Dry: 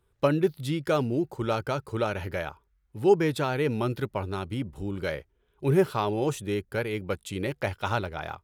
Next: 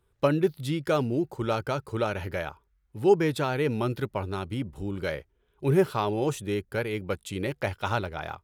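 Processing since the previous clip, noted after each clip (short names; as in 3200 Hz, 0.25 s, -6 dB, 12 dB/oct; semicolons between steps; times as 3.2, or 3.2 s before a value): nothing audible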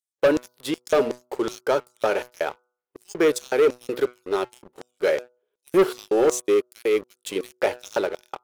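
LFO high-pass square 2.7 Hz 430–6200 Hz; de-hum 123.2 Hz, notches 12; sample leveller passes 3; gain -4.5 dB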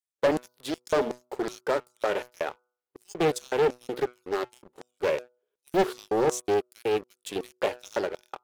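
Doppler distortion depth 0.66 ms; gain -4.5 dB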